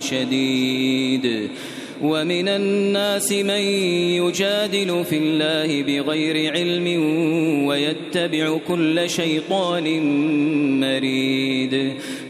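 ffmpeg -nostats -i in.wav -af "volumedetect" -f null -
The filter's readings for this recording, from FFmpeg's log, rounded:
mean_volume: -20.2 dB
max_volume: -8.0 dB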